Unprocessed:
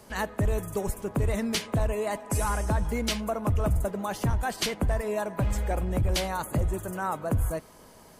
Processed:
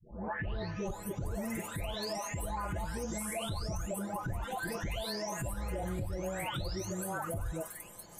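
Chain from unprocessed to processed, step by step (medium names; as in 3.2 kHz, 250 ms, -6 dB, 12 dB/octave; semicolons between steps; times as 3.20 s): delay that grows with frequency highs late, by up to 873 ms; compression 3:1, threshold -30 dBFS, peak gain reduction 7 dB; peak limiter -28 dBFS, peak gain reduction 8.5 dB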